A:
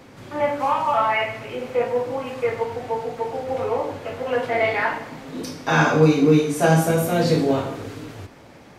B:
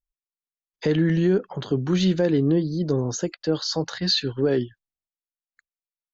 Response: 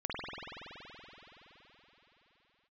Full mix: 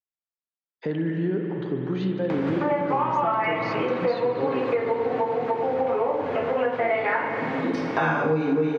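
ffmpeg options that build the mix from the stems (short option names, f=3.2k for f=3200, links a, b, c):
-filter_complex "[0:a]bandreject=f=50:t=h:w=6,bandreject=f=100:t=h:w=6,bandreject=f=150:t=h:w=6,bandreject=f=200:t=h:w=6,bandreject=f=250:t=h:w=6,bandreject=f=300:t=h:w=6,bandreject=f=350:t=h:w=6,bandreject=f=400:t=h:w=6,bandreject=f=450:t=h:w=6,bandreject=f=500:t=h:w=6,acompressor=mode=upward:threshold=-21dB:ratio=2.5,adelay=2300,volume=2.5dB,asplit=2[a][b];[b]volume=-15.5dB[c];[1:a]volume=-8dB,asplit=2[d][e];[e]volume=-5dB[f];[2:a]atrim=start_sample=2205[g];[c][f]amix=inputs=2:normalize=0[h];[h][g]afir=irnorm=-1:irlink=0[i];[a][d][i]amix=inputs=3:normalize=0,highpass=130,lowpass=2.2k,acompressor=threshold=-20dB:ratio=6"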